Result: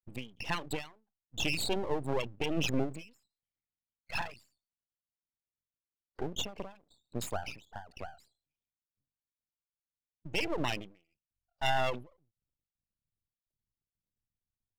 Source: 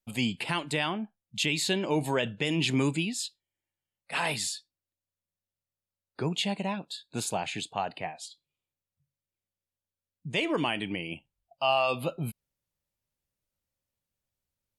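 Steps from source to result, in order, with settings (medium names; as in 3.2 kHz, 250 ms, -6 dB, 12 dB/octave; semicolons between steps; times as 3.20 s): resonances exaggerated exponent 3; half-wave rectifier; endings held to a fixed fall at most 150 dB/s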